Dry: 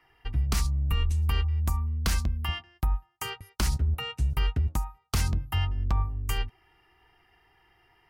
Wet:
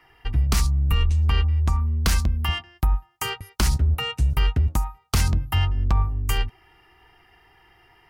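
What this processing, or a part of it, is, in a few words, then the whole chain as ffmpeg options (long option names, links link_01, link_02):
parallel distortion: -filter_complex "[0:a]asplit=2[link_01][link_02];[link_02]asoftclip=type=hard:threshold=-33.5dB,volume=-9.5dB[link_03];[link_01][link_03]amix=inputs=2:normalize=0,asettb=1/sr,asplit=3[link_04][link_05][link_06];[link_04]atrim=end=1.034[link_07];[link_05]atrim=start=1.03:end=1.8,asetpts=PTS-STARTPTS,afade=type=in:duration=0.004:curve=qsin,afade=type=out:start_time=0.766:duration=0.004:curve=qsin,lowpass=5900[link_08];[link_06]atrim=start=1.796[link_09];[link_07][link_08]acrossfade=duration=0.004:curve1=hsin:curve2=qsin[link_10];[link_10][link_09]acrossfade=duration=0.004:curve1=qsin:curve2=hsin,volume=5dB"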